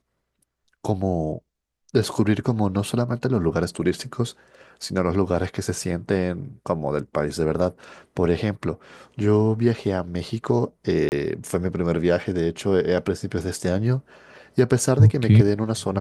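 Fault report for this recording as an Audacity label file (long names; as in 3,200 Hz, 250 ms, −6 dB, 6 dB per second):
11.090000	11.120000	drop-out 29 ms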